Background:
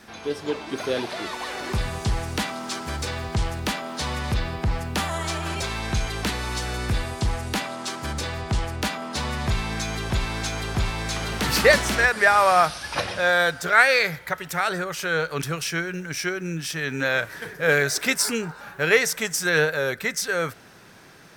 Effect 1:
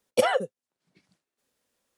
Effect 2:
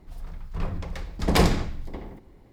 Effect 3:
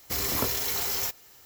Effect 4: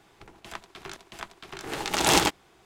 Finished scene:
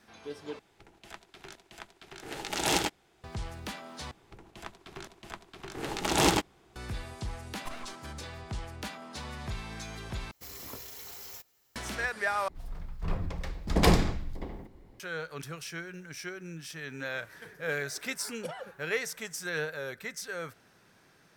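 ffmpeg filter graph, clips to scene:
-filter_complex "[4:a]asplit=2[a][b];[1:a]asplit=2[c][d];[0:a]volume=-13dB[e];[a]equalizer=f=1.1k:t=o:w=0.24:g=-7[f];[b]lowshelf=f=470:g=7[g];[c]aeval=exprs='abs(val(0))':c=same[h];[e]asplit=5[i][j][k][l][m];[i]atrim=end=0.594[n];[f]atrim=end=2.65,asetpts=PTS-STARTPTS,volume=-6.5dB[o];[j]atrim=start=3.236:end=4.114[p];[g]atrim=end=2.65,asetpts=PTS-STARTPTS,volume=-5.5dB[q];[k]atrim=start=6.756:end=10.314[r];[3:a]atrim=end=1.45,asetpts=PTS-STARTPTS,volume=-16dB[s];[l]atrim=start=11.756:end=12.484[t];[2:a]atrim=end=2.52,asetpts=PTS-STARTPTS,volume=-2.5dB[u];[m]atrim=start=14.996[v];[h]atrim=end=1.97,asetpts=PTS-STARTPTS,volume=-17.5dB,afade=t=in:d=0.004:c=hsin,afade=t=out:st=1.966:d=0.004:c=hsin,adelay=7480[w];[d]atrim=end=1.97,asetpts=PTS-STARTPTS,volume=-18dB,afade=t=in:d=0.004:c=hsin,afade=t=out:st=1.966:d=0.004:c=hsin,adelay=18260[x];[n][o]acrossfade=d=0.004:c1=hsin:c2=hsin[y];[y][p]acrossfade=d=0.004:c1=hsin:c2=hsin[z];[z][q]acrossfade=d=0.004:c1=hsin:c2=hsin[aa];[aa][r]acrossfade=d=0.004:c1=hsin:c2=hsin[ab];[ab][s]acrossfade=d=0.004:c1=hsin:c2=hsin[ac];[ac][t]acrossfade=d=0.004:c1=hsin:c2=hsin[ad];[ad][u]acrossfade=d=0.004:c1=hsin:c2=hsin[ae];[ae][v]acrossfade=d=0.004:c1=hsin:c2=hsin[af];[af][w][x]amix=inputs=3:normalize=0"

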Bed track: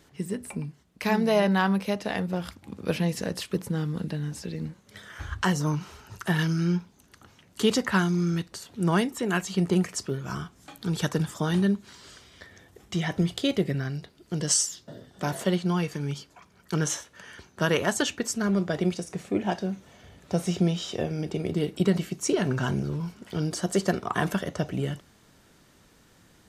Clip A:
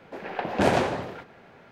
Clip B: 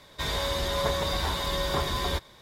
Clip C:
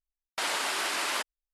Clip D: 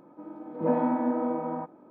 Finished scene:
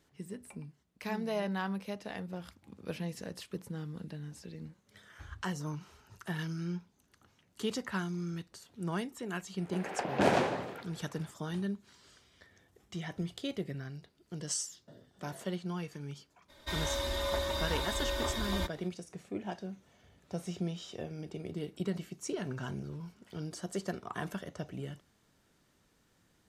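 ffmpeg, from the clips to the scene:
-filter_complex "[0:a]volume=-12dB[a];[1:a]highpass=110[b];[2:a]aecho=1:1:3.3:0.71[c];[b]atrim=end=1.71,asetpts=PTS-STARTPTS,volume=-5dB,afade=t=in:d=0.004:c=hsin,afade=t=out:st=1.706:d=0.004:c=hsin,adelay=9600[d];[c]atrim=end=2.41,asetpts=PTS-STARTPTS,volume=-8dB,afade=t=in:d=0.02,afade=t=out:st=2.39:d=0.02,adelay=16480[e];[a][d][e]amix=inputs=3:normalize=0"

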